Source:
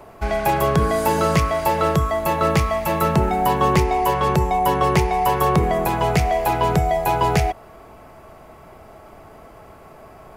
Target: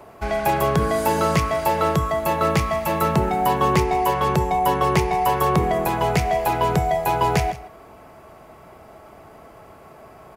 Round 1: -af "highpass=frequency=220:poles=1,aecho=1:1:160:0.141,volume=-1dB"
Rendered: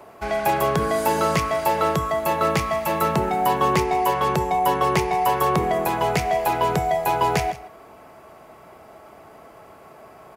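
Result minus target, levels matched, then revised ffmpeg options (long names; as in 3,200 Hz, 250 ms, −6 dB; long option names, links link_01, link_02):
125 Hz band −4.0 dB
-af "highpass=frequency=71:poles=1,aecho=1:1:160:0.141,volume=-1dB"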